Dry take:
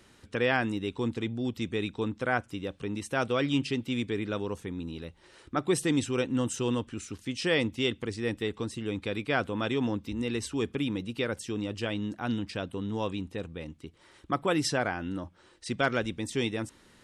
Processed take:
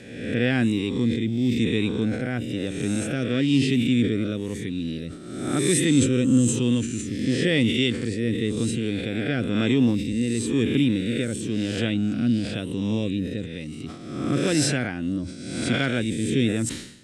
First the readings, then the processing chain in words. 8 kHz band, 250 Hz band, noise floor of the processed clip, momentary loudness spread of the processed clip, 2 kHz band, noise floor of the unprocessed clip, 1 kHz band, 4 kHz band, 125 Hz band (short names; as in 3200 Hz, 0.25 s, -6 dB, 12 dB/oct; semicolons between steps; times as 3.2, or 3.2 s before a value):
+10.0 dB, +10.0 dB, -36 dBFS, 9 LU, +3.0 dB, -60 dBFS, -4.5 dB, +6.5 dB, +10.0 dB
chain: spectral swells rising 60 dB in 1.02 s; dynamic EQ 5300 Hz, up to -8 dB, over -50 dBFS, Q 1.5; rotary speaker horn 1 Hz; ten-band EQ 125 Hz +9 dB, 250 Hz +9 dB, 1000 Hz -9 dB, 2000 Hz +4 dB, 4000 Hz +6 dB, 8000 Hz +9 dB; sustainer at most 78 dB/s